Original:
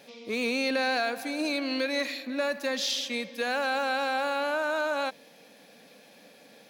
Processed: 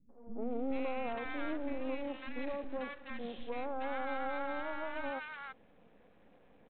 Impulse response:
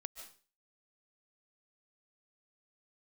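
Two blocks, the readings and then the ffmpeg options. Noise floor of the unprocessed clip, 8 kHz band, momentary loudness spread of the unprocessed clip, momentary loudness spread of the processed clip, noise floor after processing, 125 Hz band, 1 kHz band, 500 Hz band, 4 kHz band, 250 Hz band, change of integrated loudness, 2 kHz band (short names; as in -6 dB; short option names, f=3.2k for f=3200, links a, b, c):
-55 dBFS, under -40 dB, 5 LU, 7 LU, -63 dBFS, n/a, -9.0 dB, -9.5 dB, -21.5 dB, -7.0 dB, -11.0 dB, -13.5 dB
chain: -filter_complex "[0:a]lowpass=1.5k,lowshelf=f=270:g=10,bandreject=f=600:w=16,aresample=8000,aeval=exprs='max(val(0),0)':c=same,aresample=44100,acrossover=split=220|1100[a][b][c];[b]adelay=90[d];[c]adelay=420[e];[a][d][e]amix=inputs=3:normalize=0,volume=-5dB"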